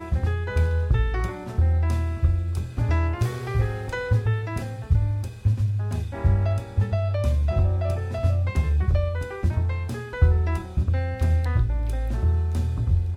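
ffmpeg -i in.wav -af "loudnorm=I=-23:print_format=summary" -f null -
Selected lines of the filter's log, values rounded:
Input Integrated:    -24.7 LUFS
Input True Peak:      -6.2 dBTP
Input LRA:             1.2 LU
Input Threshold:     -34.7 LUFS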